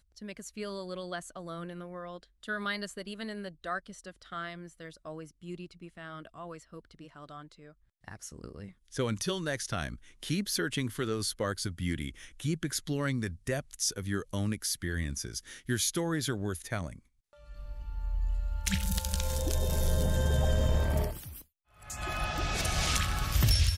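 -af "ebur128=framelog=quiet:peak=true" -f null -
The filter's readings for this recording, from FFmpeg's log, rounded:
Integrated loudness:
  I:         -33.1 LUFS
  Threshold: -44.3 LUFS
Loudness range:
  LRA:        13.6 LU
  Threshold: -54.5 LUFS
  LRA low:   -44.5 LUFS
  LRA high:  -30.9 LUFS
True peak:
  Peak:      -11.2 dBFS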